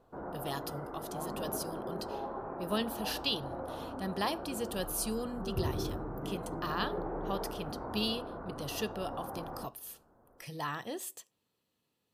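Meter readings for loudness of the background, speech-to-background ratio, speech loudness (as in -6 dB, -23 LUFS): -41.0 LUFS, 2.5 dB, -38.5 LUFS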